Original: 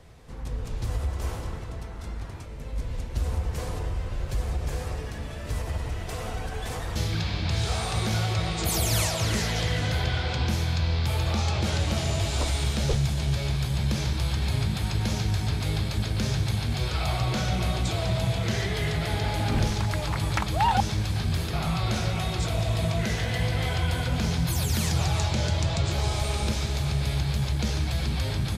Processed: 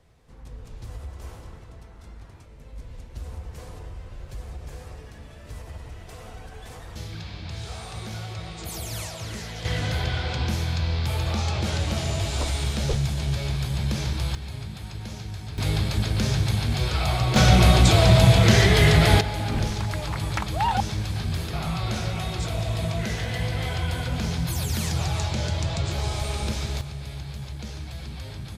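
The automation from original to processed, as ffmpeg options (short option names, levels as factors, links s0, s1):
-af "asetnsamples=n=441:p=0,asendcmd='9.65 volume volume 0dB;14.35 volume volume -9dB;15.58 volume volume 3dB;17.36 volume volume 11dB;19.21 volume volume -1dB;26.81 volume volume -9dB',volume=0.376"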